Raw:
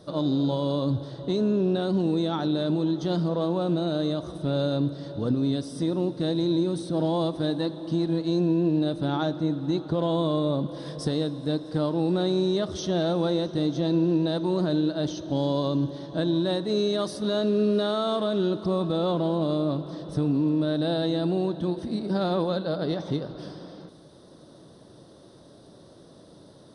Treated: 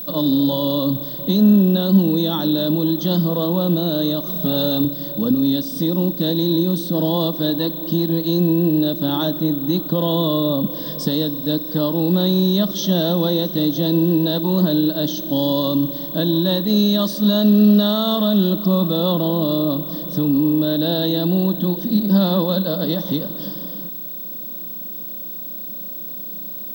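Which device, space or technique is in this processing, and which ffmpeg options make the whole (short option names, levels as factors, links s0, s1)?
old television with a line whistle: -filter_complex "[0:a]highpass=f=170:w=0.5412,highpass=f=170:w=1.3066,equalizer=f=200:t=q:w=4:g=7,equalizer=f=400:t=q:w=4:g=-10,equalizer=f=760:t=q:w=4:g=-9,equalizer=f=1400:t=q:w=4:g=-8,equalizer=f=2300:t=q:w=4:g=-9,equalizer=f=3300:t=q:w=4:g=6,lowpass=f=8500:w=0.5412,lowpass=f=8500:w=1.3066,aeval=exprs='val(0)+0.0158*sin(2*PI*15734*n/s)':c=same,asettb=1/sr,asplit=3[s0][s1][s2];[s0]atrim=end=4.274[s3];[s1]atrim=start=4.27:end=4.85,asetpts=PTS-STARTPTS,afade=t=in:d=0.004:c=qsin,afade=t=out:st=0.576:d=0.004:c=qsin,aecho=1:1:4.7:0.8,atrim=end_sample=25578[s4];[s2]atrim=start=4.846[s5];[s3][s4]acrossfade=d=0.004:c1=hsin:c2=qsin[s6];[s6][s5]acrossfade=d=0.004:c1=qsin:c2=hsin,volume=2.66"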